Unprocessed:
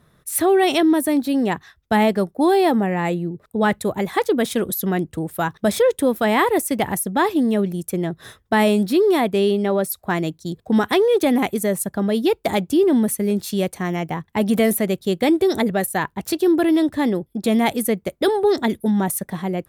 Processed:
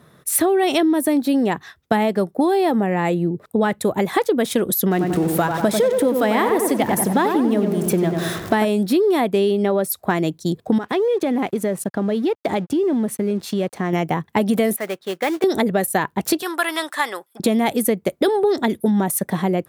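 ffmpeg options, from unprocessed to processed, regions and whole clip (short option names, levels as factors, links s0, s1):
-filter_complex "[0:a]asettb=1/sr,asplit=3[s0][s1][s2];[s0]atrim=end=4.914[s3];[s1]atrim=start=4.91:end=8.65,asetpts=PTS-STARTPTS,afade=t=in:d=0.004:c=qsin,afade=t=out:st=3.736:d=0.004:c=qsin,aeval=exprs='val(0)+0.5*0.0237*sgn(val(0))':c=same,asplit=2[s4][s5];[s5]adelay=93,lowpass=f=1900:p=1,volume=0.562,asplit=2[s6][s7];[s7]adelay=93,lowpass=f=1900:p=1,volume=0.52,asplit=2[s8][s9];[s9]adelay=93,lowpass=f=1900:p=1,volume=0.52,asplit=2[s10][s11];[s11]adelay=93,lowpass=f=1900:p=1,volume=0.52,asplit=2[s12][s13];[s13]adelay=93,lowpass=f=1900:p=1,volume=0.52,asplit=2[s14][s15];[s15]adelay=93,lowpass=f=1900:p=1,volume=0.52,asplit=2[s16][s17];[s17]adelay=93,lowpass=f=1900:p=1,volume=0.52[s18];[s4][s6][s8][s10][s12][s14][s16][s18]amix=inputs=8:normalize=0,atrim=end_sample=164934[s19];[s2]atrim=start=8.646[s20];[s3][s19]acrossfade=d=0.004:c1=hsin:c2=qsin[s21];[s21][s20]acrossfade=d=0.004:c1=qsin:c2=hsin,asettb=1/sr,asplit=3[s22][s23][s24];[s22]atrim=end=10.784[s25];[s23]atrim=start=10.78:end=13.93,asetpts=PTS-STARTPTS,afade=t=in:d=0.004:c=qsin,afade=t=out:st=3.146:d=0.004:c=qsin,aemphasis=mode=reproduction:type=50kf,acompressor=threshold=0.0501:ratio=3:attack=3.2:release=140:knee=1:detection=peak,aeval=exprs='sgn(val(0))*max(abs(val(0))-0.00266,0)':c=same[s26];[s24]atrim=start=13.926[s27];[s25][s26]acrossfade=d=0.004:c1=hsin:c2=qsin[s28];[s28][s27]acrossfade=d=0.004:c1=qsin:c2=hsin,asettb=1/sr,asplit=3[s29][s30][s31];[s29]atrim=end=14.764[s32];[s30]atrim=start=14.76:end=15.44,asetpts=PTS-STARTPTS,afade=t=in:d=0.004:c=qsin,afade=t=out:st=0.676:d=0.004:c=qsin,bandpass=f=1400:t=q:w=1.3,acrusher=bits=3:mode=log:mix=0:aa=0.000001[s33];[s31]atrim=start=15.436[s34];[s32][s33]acrossfade=d=0.004:c1=hsin:c2=qsin[s35];[s35][s34]acrossfade=d=0.004:c1=qsin:c2=hsin,asettb=1/sr,asplit=3[s36][s37][s38];[s36]atrim=end=16.424[s39];[s37]atrim=start=16.42:end=17.4,asetpts=PTS-STARTPTS,afade=t=in:d=0.004:c=qsin,afade=t=out:st=0.976:d=0.004:c=qsin,highpass=f=1200:t=q:w=1.9,equalizer=f=8700:w=1.2:g=6.5[s40];[s38]atrim=start=17.396[s41];[s39][s40]acrossfade=d=0.004:c1=hsin:c2=qsin[s42];[s42][s41]acrossfade=d=0.004:c1=qsin:c2=hsin,highpass=110,equalizer=f=470:w=0.57:g=2.5,acompressor=threshold=0.0891:ratio=6,volume=2"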